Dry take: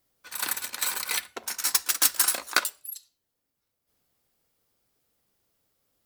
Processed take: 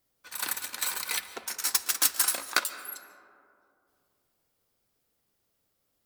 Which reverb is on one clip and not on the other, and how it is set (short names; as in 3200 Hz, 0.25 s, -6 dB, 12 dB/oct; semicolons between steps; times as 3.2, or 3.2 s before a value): digital reverb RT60 2.7 s, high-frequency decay 0.3×, pre-delay 0.1 s, DRR 12.5 dB; gain -2.5 dB